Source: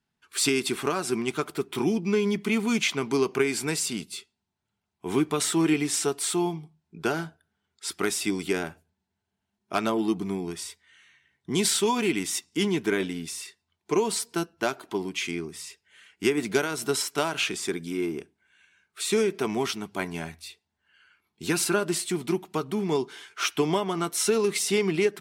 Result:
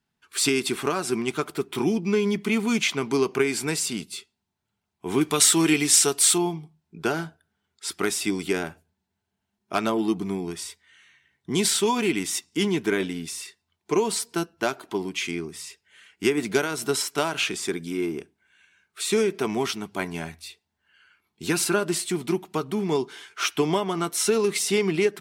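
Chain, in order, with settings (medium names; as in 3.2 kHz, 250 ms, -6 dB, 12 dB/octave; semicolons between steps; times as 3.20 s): 5.21–6.38 s: treble shelf 2.3 kHz +10 dB; trim +1.5 dB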